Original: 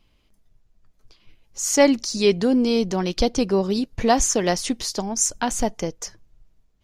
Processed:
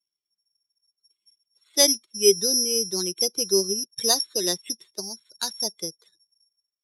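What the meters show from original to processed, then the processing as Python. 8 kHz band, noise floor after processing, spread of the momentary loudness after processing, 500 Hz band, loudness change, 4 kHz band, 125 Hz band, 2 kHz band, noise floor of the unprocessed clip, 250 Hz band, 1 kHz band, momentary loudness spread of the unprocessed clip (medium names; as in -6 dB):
+1.5 dB, under -85 dBFS, 15 LU, -4.5 dB, -1.0 dB, +5.5 dB, -13.0 dB, -9.5 dB, -64 dBFS, -12.5 dB, -13.0 dB, 10 LU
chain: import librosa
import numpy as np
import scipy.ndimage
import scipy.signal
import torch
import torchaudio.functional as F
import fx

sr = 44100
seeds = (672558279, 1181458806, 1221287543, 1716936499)

y = fx.bin_expand(x, sr, power=1.5)
y = (np.kron(scipy.signal.resample_poly(y, 1, 8), np.eye(8)[0]) * 8)[:len(y)]
y = fx.cabinet(y, sr, low_hz=170.0, low_slope=24, high_hz=9800.0, hz=(250.0, 390.0, 760.0, 1200.0, 3800.0, 7400.0), db=(-9, 10, -5, -3, 9, -6))
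y = F.gain(torch.from_numpy(y), -7.5).numpy()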